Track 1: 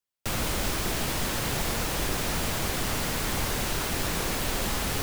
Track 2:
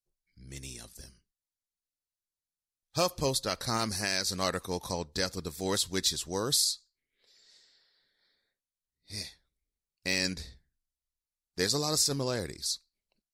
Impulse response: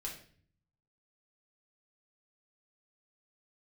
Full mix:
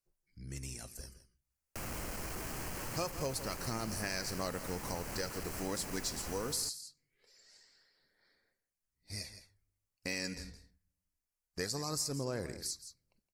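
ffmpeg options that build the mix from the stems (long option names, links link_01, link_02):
-filter_complex "[0:a]asoftclip=type=tanh:threshold=-29.5dB,adelay=1500,volume=-5dB,asplit=2[link_01][link_02];[link_02]volume=-3.5dB[link_03];[1:a]aphaser=in_gain=1:out_gain=1:delay=4.2:decay=0.31:speed=0.24:type=sinusoidal,volume=0.5dB,asplit=3[link_04][link_05][link_06];[link_05]volume=-17.5dB[link_07];[link_06]volume=-15dB[link_08];[2:a]atrim=start_sample=2205[link_09];[link_07][link_09]afir=irnorm=-1:irlink=0[link_10];[link_03][link_08]amix=inputs=2:normalize=0,aecho=0:1:166:1[link_11];[link_01][link_04][link_10][link_11]amix=inputs=4:normalize=0,equalizer=frequency=3600:width=3.8:gain=-14.5,acompressor=threshold=-41dB:ratio=2"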